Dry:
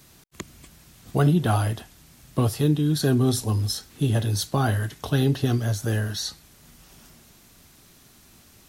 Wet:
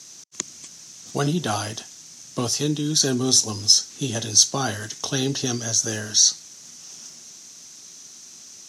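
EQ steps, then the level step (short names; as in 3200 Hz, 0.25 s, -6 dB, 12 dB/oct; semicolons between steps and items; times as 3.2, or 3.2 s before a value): HPF 180 Hz 12 dB/oct; synth low-pass 6100 Hz, resonance Q 5.4; high shelf 4700 Hz +11.5 dB; -1.0 dB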